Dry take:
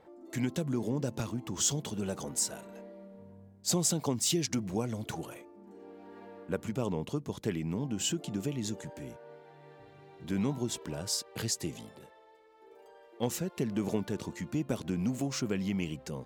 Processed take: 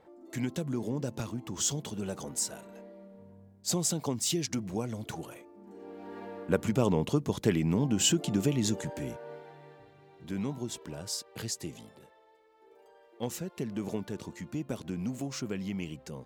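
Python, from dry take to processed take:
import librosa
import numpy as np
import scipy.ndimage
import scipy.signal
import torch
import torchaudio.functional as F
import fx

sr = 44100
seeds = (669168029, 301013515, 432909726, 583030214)

y = fx.gain(x, sr, db=fx.line((5.42, -1.0), (6.11, 6.5), (9.37, 6.5), (9.95, -3.0)))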